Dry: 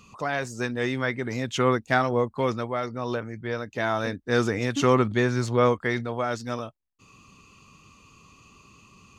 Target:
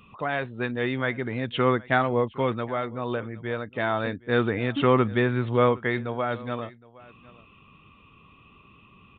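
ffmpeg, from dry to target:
-filter_complex "[0:a]asplit=2[a][b];[b]aecho=0:1:765:0.0794[c];[a][c]amix=inputs=2:normalize=0,aresample=8000,aresample=44100"

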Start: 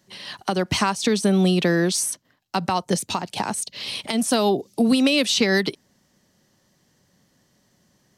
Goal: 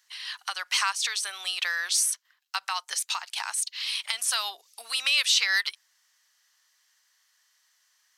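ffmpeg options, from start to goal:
-af "highpass=f=1.2k:w=0.5412,highpass=f=1.2k:w=1.3066"

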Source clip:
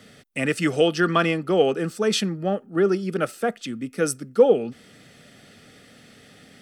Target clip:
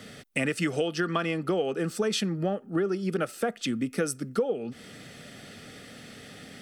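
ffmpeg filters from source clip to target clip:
-af "acompressor=threshold=-28dB:ratio=10,volume=4dB"

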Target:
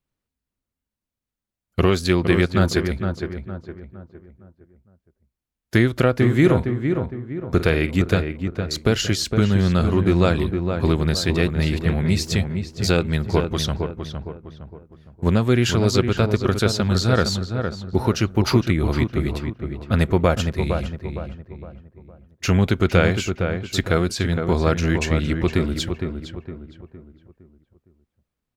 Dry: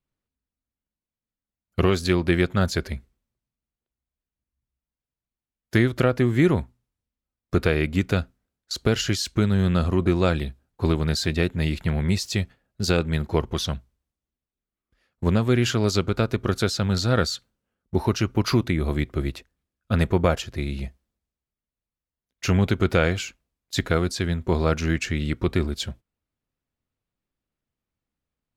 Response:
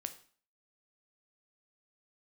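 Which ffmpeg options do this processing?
-filter_complex "[0:a]asettb=1/sr,asplit=3[a][b][c];[a]atrim=end=6.174[d];[b]atrim=start=6.17:end=7.96,asetpts=PTS-STARTPTS,afade=t=in:d=0.004:c=qsin,afade=t=out:st=1.786:d=0.004:c=qsin,asplit=2[e][f];[f]adelay=49,volume=-12.5dB[g];[e][g]amix=inputs=2:normalize=0,atrim=end_sample=78939[h];[c]atrim=start=7.956[i];[d][h]acrossfade=d=0.004:c1=hsin:c2=qsin[j];[j][i]acrossfade=d=0.004:c1=qsin:c2=hsin,asplit=2[k][l];[l]adelay=461,lowpass=f=1.8k:p=1,volume=-6dB,asplit=2[m][n];[n]adelay=461,lowpass=f=1.8k:p=1,volume=0.41,asplit=2[o][p];[p]adelay=461,lowpass=f=1.8k:p=1,volume=0.41,asplit=2[q][r];[r]adelay=461,lowpass=f=1.8k:p=1,volume=0.41,asplit=2[s][t];[t]adelay=461,lowpass=f=1.8k:p=1,volume=0.41[u];[k][m][o][q][s][u]amix=inputs=6:normalize=0,volume=2.5dB"

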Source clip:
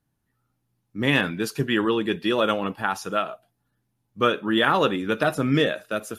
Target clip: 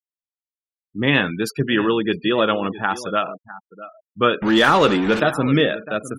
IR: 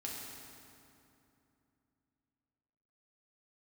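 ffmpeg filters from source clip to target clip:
-filter_complex "[0:a]asettb=1/sr,asplit=3[a][b][c];[a]atrim=end=4.424[d];[b]atrim=start=4.42:end=5.2,asetpts=PTS-STARTPTS,afade=t=in:d=0.004:c=qsin,afade=t=out:st=0.776:d=0.004:c=qsin,aeval=exprs='val(0)+0.5*0.0708*sgn(val(0))':c=same[e];[c]atrim=start=5.196[f];[d][e]acrossfade=d=0.004:c1=hsin:c2=qsin[g];[g][f]acrossfade=d=0.004:c1=qsin:c2=hsin,aecho=1:1:655:0.168,afftfilt=real='re*gte(hypot(re,im),0.0158)':imag='im*gte(hypot(re,im),0.0158)':win_size=1024:overlap=0.75,volume=3.5dB"

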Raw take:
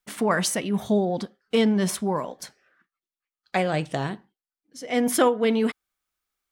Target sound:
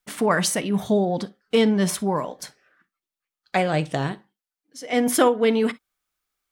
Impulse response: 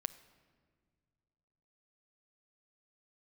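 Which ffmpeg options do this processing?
-filter_complex "[0:a]asettb=1/sr,asplit=3[a][b][c];[a]atrim=end=4.124[d];[b]atrim=start=4.12:end=4.93,asetpts=PTS-STARTPTS,afade=t=in:d=0.004:c=qsin,afade=t=out:st=0.806:d=0.004:c=qsin,lowshelf=f=260:g=-8.5[e];[c]atrim=start=4.926[f];[d][e]acrossfade=d=0.004:c1=hsin:c2=qsin[g];[g][f]acrossfade=d=0.004:c1=qsin:c2=hsin[h];[1:a]atrim=start_sample=2205,atrim=end_sample=3087[i];[h][i]afir=irnorm=-1:irlink=0,volume=3.5dB"

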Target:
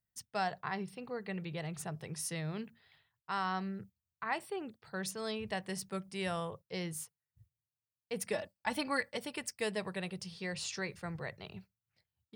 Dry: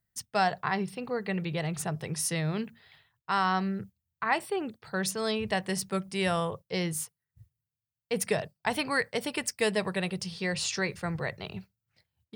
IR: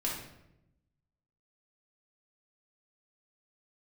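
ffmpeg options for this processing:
-filter_complex "[0:a]asettb=1/sr,asplit=3[a][b][c];[a]atrim=end=8.334[d];[b]atrim=start=8.33:end=9.17,asetpts=PTS-STARTPTS,afade=t=in:d=0.004:c=qsin,afade=t=out:st=0.836:d=0.004:c=qsin,aecho=1:1:3.5:0.83,atrim=end_sample=37044[e];[c]atrim=start=9.166[f];[d][e]acrossfade=d=0.004:c1=hsin:c2=qsin[g];[g][f]acrossfade=d=0.004:c1=qsin:c2=hsin,volume=-8.5dB"

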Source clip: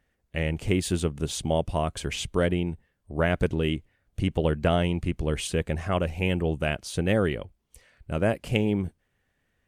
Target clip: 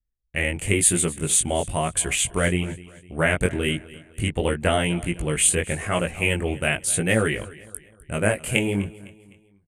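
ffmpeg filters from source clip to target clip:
-filter_complex "[0:a]anlmdn=0.01,acrossover=split=1500[a][b];[b]aexciter=amount=15.7:drive=4.3:freq=7.8k[c];[a][c]amix=inputs=2:normalize=0,flanger=delay=17:depth=5.1:speed=0.99,lowpass=f=10k:w=0.5412,lowpass=f=10k:w=1.3066,equalizer=f=2.1k:t=o:w=1.1:g=9,asplit=2[d][e];[e]aecho=0:1:254|508|762:0.106|0.0445|0.0187[f];[d][f]amix=inputs=2:normalize=0,volume=4dB"

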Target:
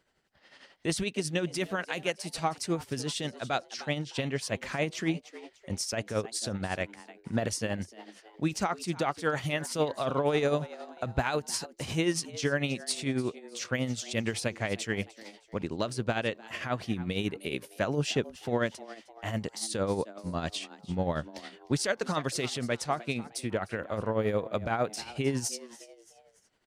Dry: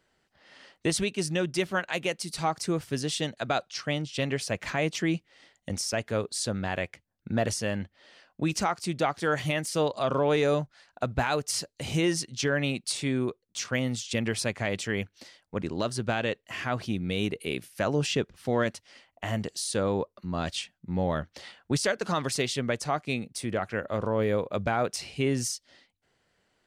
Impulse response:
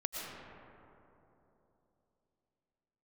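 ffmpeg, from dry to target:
-filter_complex "[0:a]asplit=4[a][b][c][d];[b]adelay=306,afreqshift=110,volume=-17.5dB[e];[c]adelay=612,afreqshift=220,volume=-25dB[f];[d]adelay=918,afreqshift=330,volume=-32.6dB[g];[a][e][f][g]amix=inputs=4:normalize=0,tremolo=f=11:d=0.57"

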